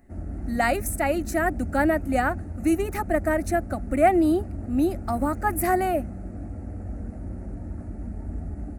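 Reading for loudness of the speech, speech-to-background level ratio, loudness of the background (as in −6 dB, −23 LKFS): −24.5 LKFS, 11.0 dB, −35.5 LKFS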